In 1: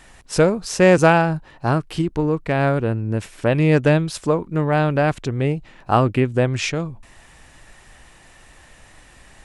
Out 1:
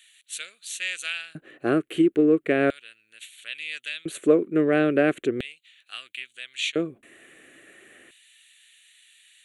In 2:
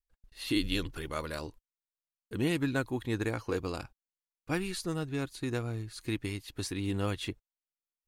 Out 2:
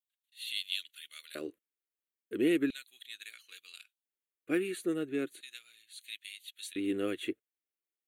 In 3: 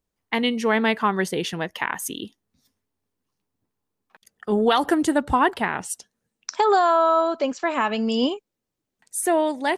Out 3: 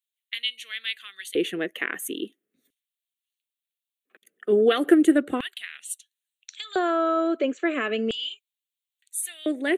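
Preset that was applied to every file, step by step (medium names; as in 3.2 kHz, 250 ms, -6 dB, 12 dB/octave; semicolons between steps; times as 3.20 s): LFO high-pass square 0.37 Hz 350–3700 Hz; static phaser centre 2.2 kHz, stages 4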